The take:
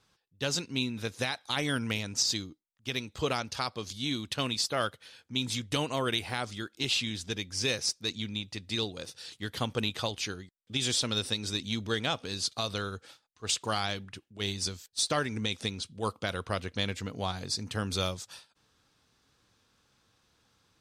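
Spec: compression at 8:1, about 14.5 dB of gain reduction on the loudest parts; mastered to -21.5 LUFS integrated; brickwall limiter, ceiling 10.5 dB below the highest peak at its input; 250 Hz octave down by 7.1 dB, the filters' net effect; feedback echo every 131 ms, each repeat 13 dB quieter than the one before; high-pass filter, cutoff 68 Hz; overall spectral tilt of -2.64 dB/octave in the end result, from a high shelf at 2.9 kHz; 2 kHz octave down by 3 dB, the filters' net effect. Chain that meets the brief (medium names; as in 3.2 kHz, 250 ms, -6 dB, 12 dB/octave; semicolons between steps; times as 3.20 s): high-pass 68 Hz; peaking EQ 250 Hz -9 dB; peaking EQ 2 kHz -6 dB; treble shelf 2.9 kHz +4.5 dB; compression 8:1, threshold -37 dBFS; peak limiter -31.5 dBFS; feedback delay 131 ms, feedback 22%, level -13 dB; trim +22 dB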